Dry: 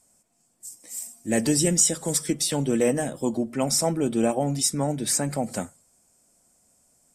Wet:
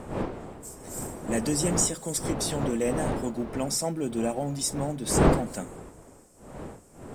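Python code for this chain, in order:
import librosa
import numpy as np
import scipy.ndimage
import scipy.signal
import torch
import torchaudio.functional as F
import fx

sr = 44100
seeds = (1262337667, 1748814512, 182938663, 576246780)

y = fx.law_mismatch(x, sr, coded='mu')
y = fx.dmg_wind(y, sr, seeds[0], corner_hz=500.0, level_db=-26.0)
y = F.gain(torch.from_numpy(y), -6.0).numpy()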